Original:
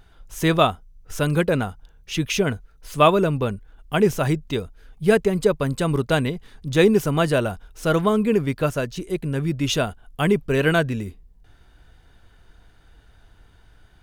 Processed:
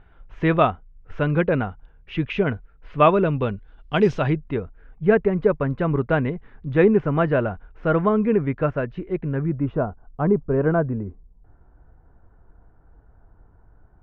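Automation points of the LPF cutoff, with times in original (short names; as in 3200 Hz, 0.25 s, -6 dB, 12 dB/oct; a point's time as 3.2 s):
LPF 24 dB/oct
3.02 s 2500 Hz
4.08 s 5000 Hz
4.44 s 2100 Hz
9.28 s 2100 Hz
9.73 s 1200 Hz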